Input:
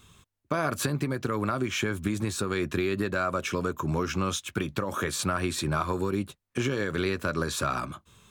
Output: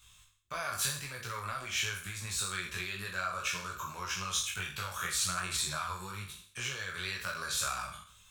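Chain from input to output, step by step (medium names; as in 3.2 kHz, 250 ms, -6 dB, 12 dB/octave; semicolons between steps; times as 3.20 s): spectral sustain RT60 0.56 s; chorus voices 6, 1.5 Hz, delay 19 ms, depth 3 ms; amplifier tone stack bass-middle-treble 10-0-10; trim +2.5 dB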